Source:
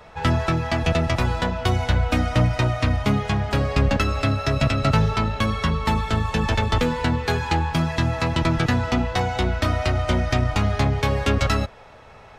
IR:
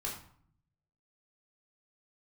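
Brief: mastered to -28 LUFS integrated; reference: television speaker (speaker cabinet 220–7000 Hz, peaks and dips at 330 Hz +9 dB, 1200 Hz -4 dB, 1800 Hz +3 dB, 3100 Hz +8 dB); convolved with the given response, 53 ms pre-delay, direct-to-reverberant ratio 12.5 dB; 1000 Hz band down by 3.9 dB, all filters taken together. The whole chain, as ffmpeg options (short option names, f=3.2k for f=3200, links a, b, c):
-filter_complex "[0:a]equalizer=f=1k:t=o:g=-4,asplit=2[a][b];[1:a]atrim=start_sample=2205,adelay=53[c];[b][c]afir=irnorm=-1:irlink=0,volume=-14dB[d];[a][d]amix=inputs=2:normalize=0,highpass=f=220:w=0.5412,highpass=f=220:w=1.3066,equalizer=f=330:t=q:w=4:g=9,equalizer=f=1.2k:t=q:w=4:g=-4,equalizer=f=1.8k:t=q:w=4:g=3,equalizer=f=3.1k:t=q:w=4:g=8,lowpass=f=7k:w=0.5412,lowpass=f=7k:w=1.3066,volume=-4dB"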